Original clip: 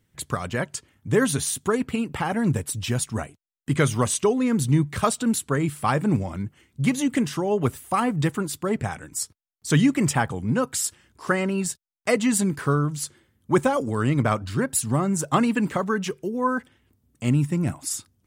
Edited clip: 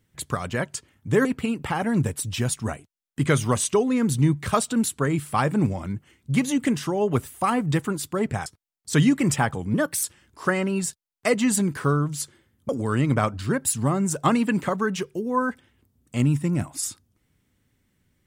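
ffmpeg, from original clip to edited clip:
ffmpeg -i in.wav -filter_complex "[0:a]asplit=6[link_01][link_02][link_03][link_04][link_05][link_06];[link_01]atrim=end=1.252[link_07];[link_02]atrim=start=1.748:end=8.962[link_08];[link_03]atrim=start=9.228:end=10.514[link_09];[link_04]atrim=start=10.51:end=10.86,asetpts=PTS-STARTPTS,asetrate=51597,aresample=44100,atrim=end_sample=13192,asetpts=PTS-STARTPTS[link_10];[link_05]atrim=start=10.856:end=13.512[link_11];[link_06]atrim=start=13.768[link_12];[link_07][link_08]acrossfade=duration=0.004:curve1=hsin:curve2=hsin[link_13];[link_13][link_09]acrossfade=duration=0.004:curve1=hsin:curve2=hsin[link_14];[link_14][link_10]acrossfade=duration=0.004:curve1=hsin:curve2=hsin[link_15];[link_15][link_11]acrossfade=duration=0.004:curve1=hsin:curve2=hsin[link_16];[link_16][link_12]acrossfade=duration=0.004:curve1=hsin:curve2=hsin" out.wav

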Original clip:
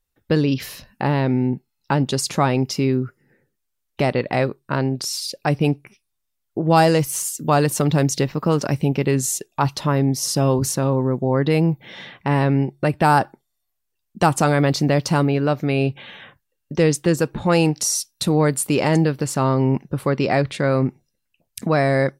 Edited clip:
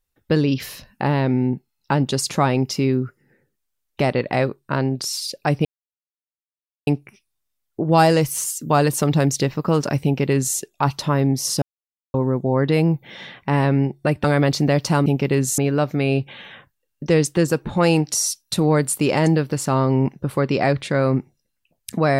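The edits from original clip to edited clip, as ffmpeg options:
ffmpeg -i in.wav -filter_complex "[0:a]asplit=7[link_01][link_02][link_03][link_04][link_05][link_06][link_07];[link_01]atrim=end=5.65,asetpts=PTS-STARTPTS,afade=type=out:start_time=5.646:duration=0.004:curve=hsin,apad=pad_dur=1.22[link_08];[link_02]atrim=start=5.65:end=10.4,asetpts=PTS-STARTPTS,afade=type=in:duration=0.004:curve=hsin,afade=type=out:start_time=4.746:duration=0.004:curve=hsin[link_09];[link_03]atrim=start=10.4:end=10.92,asetpts=PTS-STARTPTS,volume=0[link_10];[link_04]atrim=start=10.92:end=13.022,asetpts=PTS-STARTPTS,afade=type=in:duration=0.004:curve=hsin[link_11];[link_05]atrim=start=14.448:end=15.272[link_12];[link_06]atrim=start=8.818:end=9.342[link_13];[link_07]atrim=start=15.268[link_14];[link_08][link_09][link_10][link_11]concat=n=4:v=0:a=1[link_15];[link_15][link_12]acrossfade=duration=0.004:curve1=hsin:curve2=hsin[link_16];[link_16][link_13]acrossfade=duration=0.004:curve1=hsin:curve2=hsin[link_17];[link_17][link_14]acrossfade=duration=0.004:curve1=hsin:curve2=hsin" out.wav

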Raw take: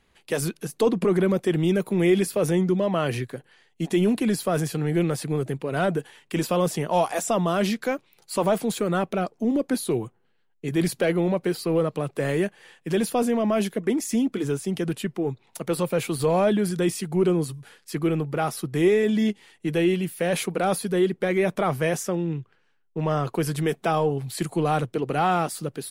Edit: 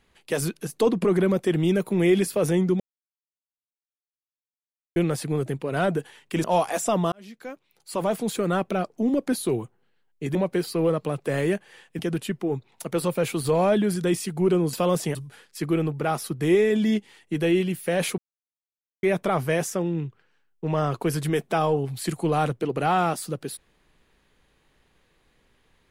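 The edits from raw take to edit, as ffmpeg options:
ffmpeg -i in.wav -filter_complex "[0:a]asplit=11[link_01][link_02][link_03][link_04][link_05][link_06][link_07][link_08][link_09][link_10][link_11];[link_01]atrim=end=2.8,asetpts=PTS-STARTPTS,afade=type=out:start_time=2.796:duration=0.004:curve=hsin[link_12];[link_02]atrim=start=2.8:end=4.96,asetpts=PTS-STARTPTS,volume=0[link_13];[link_03]atrim=start=4.96:end=6.442,asetpts=PTS-STARTPTS,afade=type=in:duration=0.004:curve=hsin[link_14];[link_04]atrim=start=6.858:end=7.54,asetpts=PTS-STARTPTS,afade=type=out:start_time=0.678:duration=0.004:curve=hsin[link_15];[link_05]atrim=start=7.54:end=10.772,asetpts=PTS-STARTPTS,afade=type=in:duration=1.34[link_16];[link_06]atrim=start=11.258:end=12.902[link_17];[link_07]atrim=start=14.738:end=17.482[link_18];[link_08]atrim=start=6.438:end=6.862[link_19];[link_09]atrim=start=17.478:end=20.51,asetpts=PTS-STARTPTS,afade=type=out:start_time=3.028:duration=0.004:curve=hsin[link_20];[link_10]atrim=start=20.51:end=21.36,asetpts=PTS-STARTPTS,volume=0[link_21];[link_11]atrim=start=21.36,asetpts=PTS-STARTPTS,afade=type=in:duration=0.004:curve=hsin[link_22];[link_12][link_13][link_14]concat=n=3:v=0:a=1[link_23];[link_15][link_16]concat=n=2:v=0:a=1[link_24];[link_23][link_24]acrossfade=duration=0.004:curve1=hsin:curve2=hsin[link_25];[link_25][link_17]acrossfade=duration=0.004:curve1=hsin:curve2=hsin[link_26];[link_26][link_18]acrossfade=duration=0.004:curve1=hsin:curve2=hsin[link_27];[link_27][link_19]acrossfade=duration=0.004:curve1=hsin:curve2=hsin[link_28];[link_20][link_21][link_22]concat=n=3:v=0:a=1[link_29];[link_28][link_29]acrossfade=duration=0.004:curve1=hsin:curve2=hsin" out.wav

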